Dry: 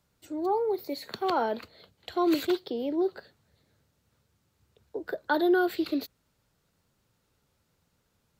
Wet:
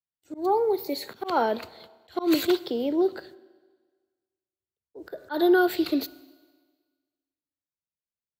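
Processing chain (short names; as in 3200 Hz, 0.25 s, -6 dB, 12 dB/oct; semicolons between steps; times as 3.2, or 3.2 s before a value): gate -54 dBFS, range -38 dB; high shelf 5500 Hz +4.5 dB; Schroeder reverb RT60 1.5 s, combs from 26 ms, DRR 19 dB; auto swell 0.133 s; gain +4 dB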